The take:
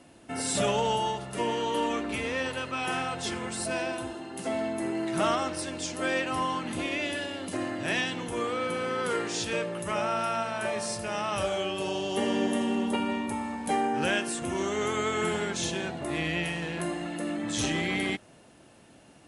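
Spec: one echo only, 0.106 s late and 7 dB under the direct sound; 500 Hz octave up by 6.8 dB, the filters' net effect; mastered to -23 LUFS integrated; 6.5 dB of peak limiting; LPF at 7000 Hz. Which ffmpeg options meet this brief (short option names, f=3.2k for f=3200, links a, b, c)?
-af "lowpass=7k,equalizer=f=500:t=o:g=8.5,alimiter=limit=-17dB:level=0:latency=1,aecho=1:1:106:0.447,volume=3.5dB"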